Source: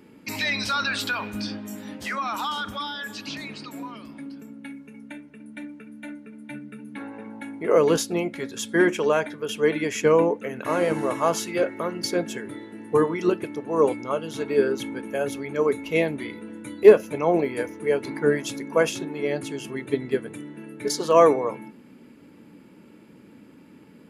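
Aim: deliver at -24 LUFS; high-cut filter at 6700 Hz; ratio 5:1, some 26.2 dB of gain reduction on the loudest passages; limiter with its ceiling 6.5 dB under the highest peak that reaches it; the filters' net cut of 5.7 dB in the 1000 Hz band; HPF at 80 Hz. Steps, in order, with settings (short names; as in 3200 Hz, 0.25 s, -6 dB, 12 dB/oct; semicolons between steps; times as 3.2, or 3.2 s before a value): HPF 80 Hz; LPF 6700 Hz; bell 1000 Hz -7.5 dB; compressor 5:1, threshold -38 dBFS; gain +18 dB; limiter -14 dBFS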